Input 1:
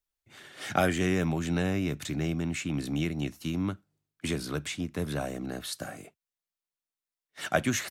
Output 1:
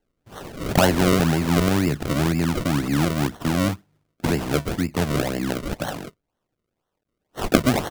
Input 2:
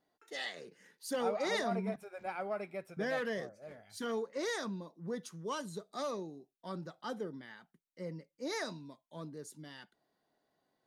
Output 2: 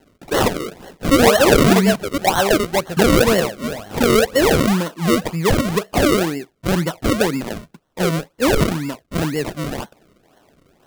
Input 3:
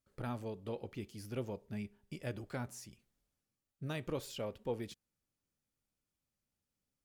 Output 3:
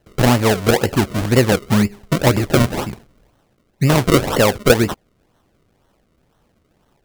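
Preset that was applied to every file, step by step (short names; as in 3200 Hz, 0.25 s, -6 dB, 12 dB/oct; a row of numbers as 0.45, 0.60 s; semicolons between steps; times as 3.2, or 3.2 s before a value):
in parallel at +1 dB: compressor, threshold -39 dBFS; on the sum: decimation with a swept rate 36×, swing 100% 2 Hz; normalise peaks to -1.5 dBFS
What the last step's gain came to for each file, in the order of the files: +7.0, +18.5, +21.5 dB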